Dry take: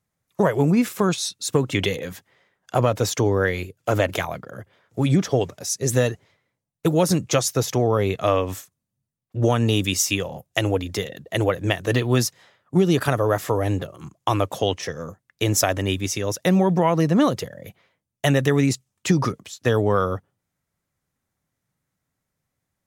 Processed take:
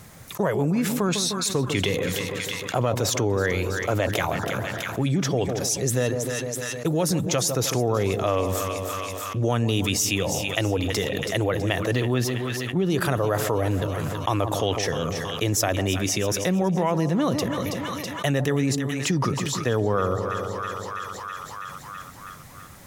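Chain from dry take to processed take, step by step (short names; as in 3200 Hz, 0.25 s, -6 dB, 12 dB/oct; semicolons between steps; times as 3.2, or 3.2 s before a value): 12.14–12.9 band shelf 7800 Hz -9.5 dB; split-band echo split 1100 Hz, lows 0.152 s, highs 0.326 s, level -13.5 dB; fast leveller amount 70%; gain -7 dB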